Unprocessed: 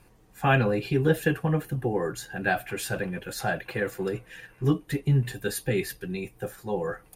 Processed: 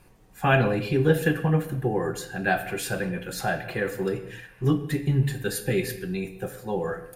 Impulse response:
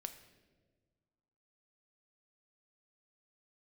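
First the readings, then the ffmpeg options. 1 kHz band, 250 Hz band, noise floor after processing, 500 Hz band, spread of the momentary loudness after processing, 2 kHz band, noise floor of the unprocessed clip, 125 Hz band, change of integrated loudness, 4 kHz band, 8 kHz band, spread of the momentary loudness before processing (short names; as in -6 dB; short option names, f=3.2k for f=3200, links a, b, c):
+1.5 dB, +2.0 dB, -53 dBFS, +2.0 dB, 9 LU, +1.5 dB, -57 dBFS, +1.5 dB, +1.5 dB, +1.5 dB, +1.5 dB, 10 LU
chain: -filter_complex "[1:a]atrim=start_sample=2205,afade=t=out:st=0.3:d=0.01,atrim=end_sample=13671[a];[0:a][a]afir=irnorm=-1:irlink=0,volume=5dB"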